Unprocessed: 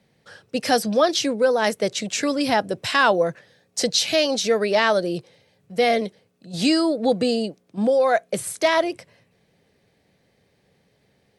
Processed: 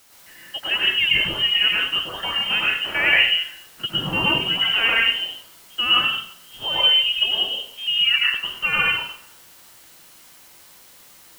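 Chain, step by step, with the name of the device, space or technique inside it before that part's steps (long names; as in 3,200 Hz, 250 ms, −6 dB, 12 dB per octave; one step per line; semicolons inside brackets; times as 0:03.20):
scrambled radio voice (band-pass filter 310–3,200 Hz; voice inversion scrambler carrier 3,400 Hz; white noise bed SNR 26 dB)
0:03.80–0:04.57: parametric band 140 Hz +13.5 dB 1.1 octaves
dense smooth reverb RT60 0.61 s, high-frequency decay 0.8×, pre-delay 90 ms, DRR −5.5 dB
level −4 dB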